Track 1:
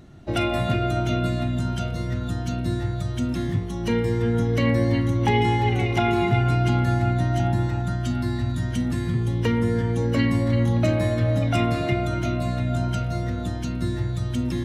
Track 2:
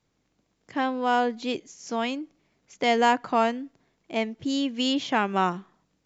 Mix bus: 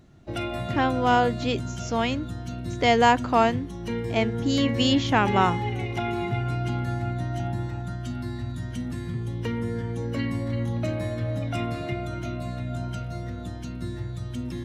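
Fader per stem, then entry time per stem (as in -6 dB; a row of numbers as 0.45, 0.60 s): -7.0, +2.5 dB; 0.00, 0.00 s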